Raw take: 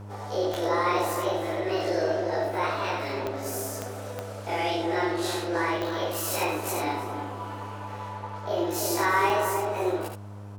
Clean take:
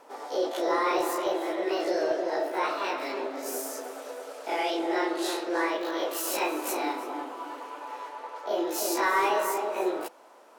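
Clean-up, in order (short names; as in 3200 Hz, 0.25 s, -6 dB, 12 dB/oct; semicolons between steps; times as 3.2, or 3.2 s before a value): de-click; de-hum 101.6 Hz, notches 15; inverse comb 73 ms -5 dB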